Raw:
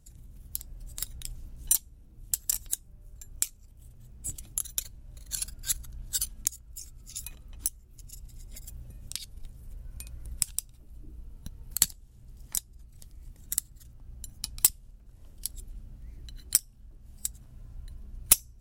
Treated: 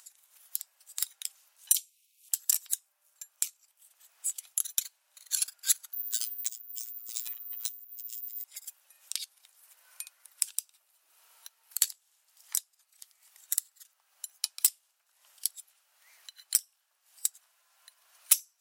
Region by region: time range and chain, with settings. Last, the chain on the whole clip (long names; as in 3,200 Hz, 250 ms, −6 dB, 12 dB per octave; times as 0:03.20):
0:01.72–0:02.29: Butterworth high-pass 2,300 Hz 72 dB per octave + compressor whose output falls as the input rises −31 dBFS
0:05.93–0:08.44: low-pass filter 7,200 Hz + phases set to zero 116 Hz + bad sample-rate conversion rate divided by 3×, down none, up zero stuff
whole clip: Bessel high-pass filter 1,300 Hz, order 6; brickwall limiter −11.5 dBFS; upward compression, threshold −54 dBFS; level +4 dB